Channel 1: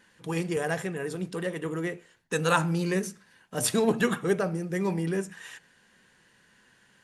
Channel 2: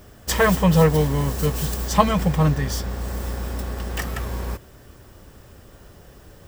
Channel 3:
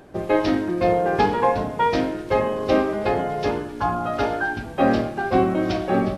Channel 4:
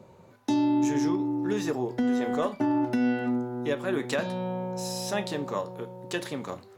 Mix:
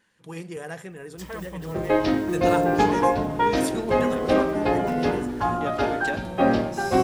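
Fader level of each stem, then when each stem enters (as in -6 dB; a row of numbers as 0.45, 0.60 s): -6.5, -19.5, -1.5, -4.0 dB; 0.00, 0.90, 1.60, 1.95 s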